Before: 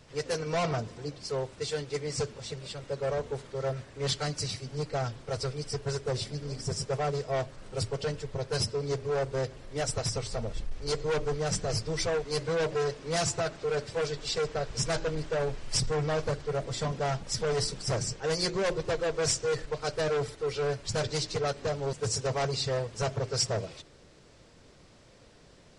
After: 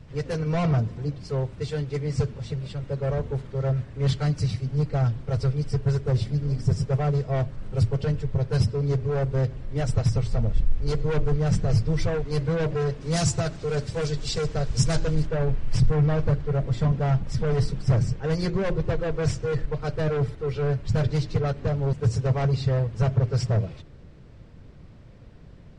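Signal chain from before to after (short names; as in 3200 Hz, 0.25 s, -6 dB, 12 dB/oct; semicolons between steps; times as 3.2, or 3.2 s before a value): tone controls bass +14 dB, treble -9 dB, from 13 s treble +3 dB, from 15.25 s treble -13 dB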